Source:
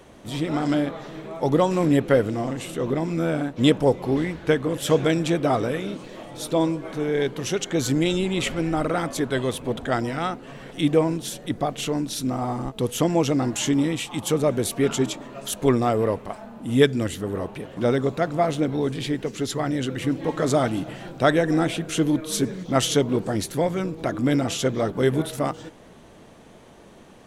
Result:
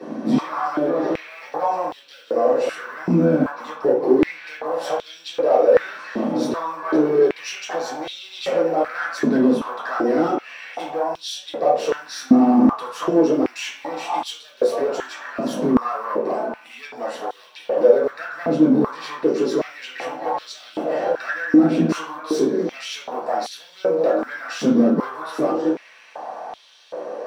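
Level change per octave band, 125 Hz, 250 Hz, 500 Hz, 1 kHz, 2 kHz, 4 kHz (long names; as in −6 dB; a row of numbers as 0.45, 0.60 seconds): −7.0, +3.0, +3.5, +4.5, +1.5, −3.0 decibels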